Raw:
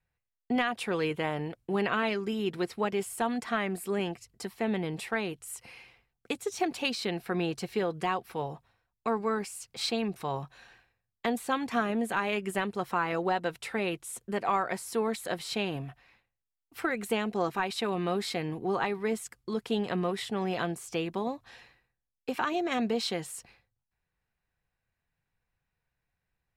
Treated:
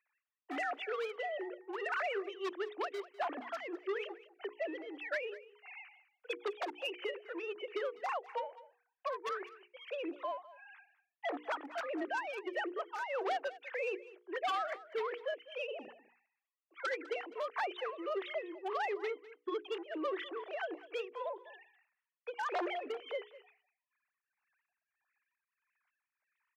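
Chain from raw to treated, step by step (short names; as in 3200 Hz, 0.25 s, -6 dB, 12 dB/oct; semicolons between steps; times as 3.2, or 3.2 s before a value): sine-wave speech; added harmonics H 2 -15 dB, 4 -22 dB, 5 -24 dB, 7 -18 dB, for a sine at -12.5 dBFS; in parallel at -1 dB: limiter -23 dBFS, peak gain reduction 11.5 dB; on the sum: dynamic EQ 430 Hz, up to -4 dB, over -33 dBFS, Q 2.4; wavefolder -20 dBFS; tremolo triangle 1.6 Hz, depth 80%; soft clip -28.5 dBFS, distortion -12 dB; HPF 330 Hz 24 dB/oct; notches 60/120/180/240/300/360/420/480 Hz; on a send: echo 0.2 s -19.5 dB; on the sum: three-band squash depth 40%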